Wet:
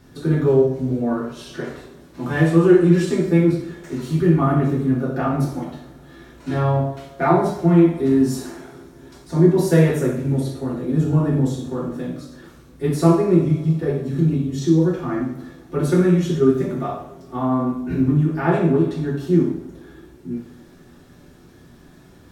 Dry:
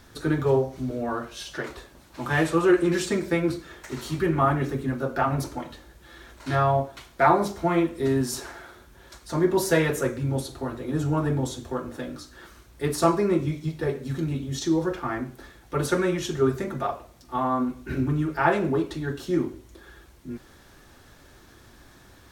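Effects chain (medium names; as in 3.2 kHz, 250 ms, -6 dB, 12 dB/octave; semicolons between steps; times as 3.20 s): peaking EQ 220 Hz +10.5 dB 2.4 oct; two-slope reverb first 0.57 s, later 4.4 s, from -27 dB, DRR -3.5 dB; trim -7 dB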